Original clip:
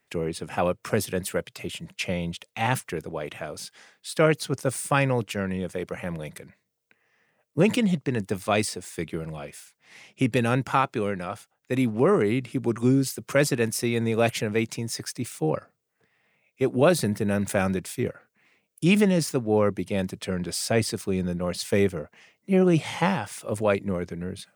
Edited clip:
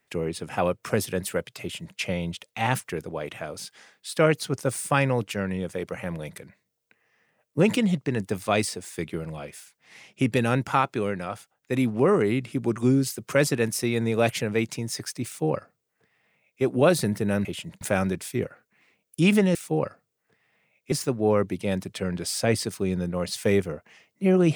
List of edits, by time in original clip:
1.61–1.97 s: copy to 17.45 s
15.26–16.63 s: copy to 19.19 s

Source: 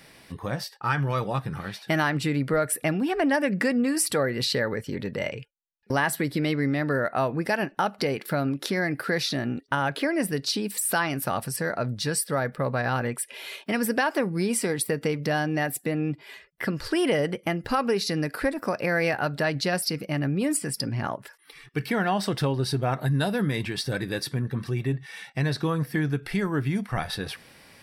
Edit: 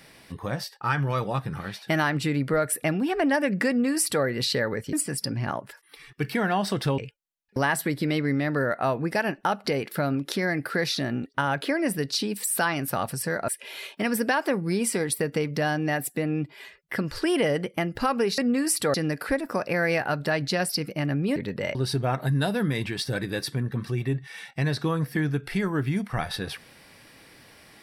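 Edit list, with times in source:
3.68–4.24 s: copy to 18.07 s
4.93–5.32 s: swap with 20.49–22.54 s
11.82–13.17 s: delete

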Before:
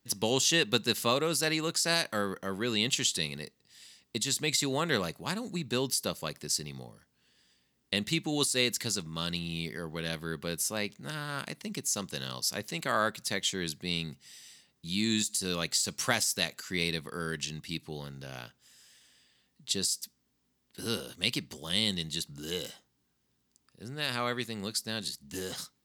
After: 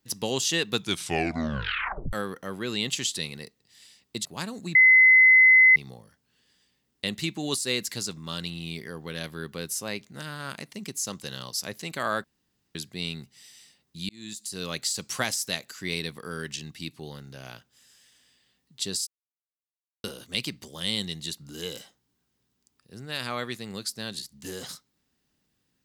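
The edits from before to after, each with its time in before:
0.72 s: tape stop 1.41 s
4.25–5.14 s: delete
5.64–6.65 s: bleep 2.04 kHz -12 dBFS
13.13–13.64 s: room tone
14.98–15.63 s: fade in
19.96–20.93 s: mute

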